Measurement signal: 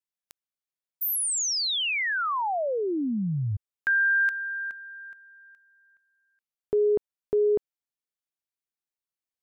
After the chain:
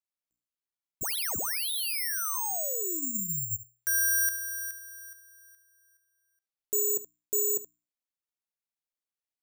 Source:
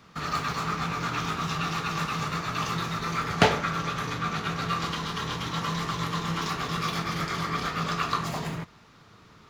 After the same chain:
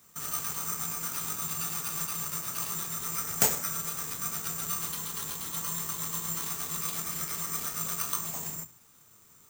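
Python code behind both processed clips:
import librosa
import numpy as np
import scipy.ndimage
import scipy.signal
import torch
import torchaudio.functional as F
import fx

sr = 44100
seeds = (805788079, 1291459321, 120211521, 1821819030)

y = fx.hum_notches(x, sr, base_hz=60, count=5)
y = y + 10.0 ** (-17.5 / 20.0) * np.pad(y, (int(73 * sr / 1000.0), 0))[:len(y)]
y = (np.kron(y[::6], np.eye(6)[0]) * 6)[:len(y)]
y = F.gain(torch.from_numpy(y), -12.0).numpy()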